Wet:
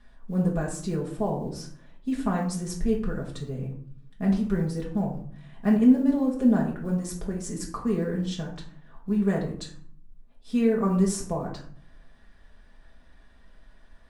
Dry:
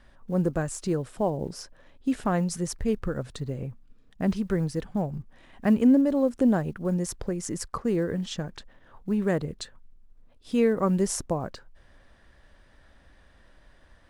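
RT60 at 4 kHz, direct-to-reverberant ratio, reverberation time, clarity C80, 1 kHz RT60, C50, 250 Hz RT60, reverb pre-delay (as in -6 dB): 0.35 s, -3.0 dB, 0.55 s, 11.0 dB, 0.55 s, 7.0 dB, 0.85 s, 4 ms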